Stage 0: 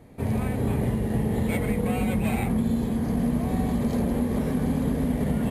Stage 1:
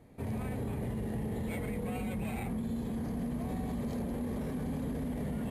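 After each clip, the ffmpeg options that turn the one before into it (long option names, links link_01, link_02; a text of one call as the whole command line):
ffmpeg -i in.wav -af "alimiter=limit=-21.5dB:level=0:latency=1:release=17,volume=-7.5dB" out.wav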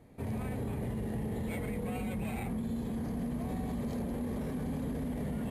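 ffmpeg -i in.wav -af anull out.wav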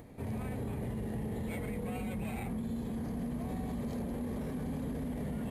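ffmpeg -i in.wav -af "acompressor=mode=upward:threshold=-43dB:ratio=2.5,volume=-1.5dB" out.wav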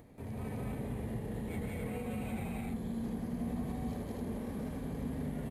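ffmpeg -i in.wav -af "aecho=1:1:180.8|259.5:0.891|0.794,volume=-5dB" out.wav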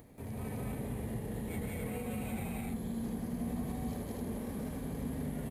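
ffmpeg -i in.wav -af "crystalizer=i=1:c=0" out.wav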